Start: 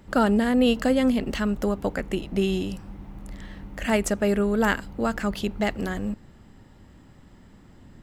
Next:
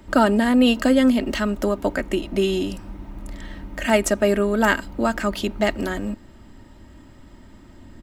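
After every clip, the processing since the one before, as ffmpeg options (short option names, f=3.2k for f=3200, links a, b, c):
-filter_complex "[0:a]aecho=1:1:3.2:0.48,acrossover=split=180[a][b];[a]alimiter=level_in=7.5dB:limit=-24dB:level=0:latency=1:release=388,volume=-7.5dB[c];[c][b]amix=inputs=2:normalize=0,volume=4dB"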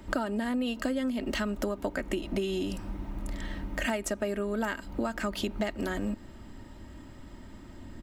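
-af "acompressor=threshold=-26dB:ratio=12,volume=-1dB"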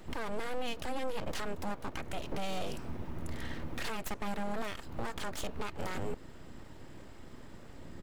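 -af "alimiter=limit=-24dB:level=0:latency=1:release=35,aeval=exprs='abs(val(0))':c=same,volume=-1dB"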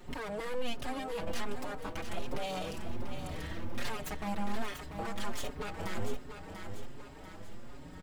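-filter_complex "[0:a]asplit=2[a][b];[b]aecho=0:1:691|1382|2073|2764|3455:0.376|0.18|0.0866|0.0416|0.02[c];[a][c]amix=inputs=2:normalize=0,asplit=2[d][e];[e]adelay=5.2,afreqshift=1.3[f];[d][f]amix=inputs=2:normalize=1,volume=2.5dB"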